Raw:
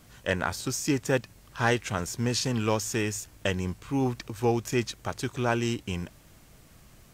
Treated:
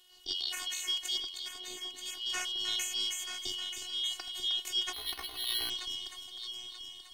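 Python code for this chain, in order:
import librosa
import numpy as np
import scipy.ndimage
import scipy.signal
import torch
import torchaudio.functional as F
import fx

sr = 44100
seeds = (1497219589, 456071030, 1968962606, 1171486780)

p1 = fx.band_shuffle(x, sr, order='3412')
p2 = fx.bandpass_q(p1, sr, hz=300.0, q=0.55, at=(1.2, 2.04))
p3 = fx.transient(p2, sr, attack_db=-2, sustain_db=8)
p4 = fx.robotise(p3, sr, hz=364.0)
p5 = p4 + fx.echo_heads(p4, sr, ms=311, heads='first and third', feedback_pct=51, wet_db=-9, dry=0)
p6 = fx.resample_bad(p5, sr, factor=6, down='none', up='hold', at=(4.93, 5.7))
y = p6 * 10.0 ** (-5.5 / 20.0)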